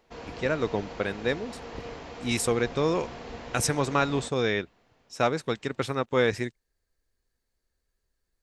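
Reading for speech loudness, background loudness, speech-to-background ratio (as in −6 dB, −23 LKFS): −28.0 LKFS, −41.0 LKFS, 13.0 dB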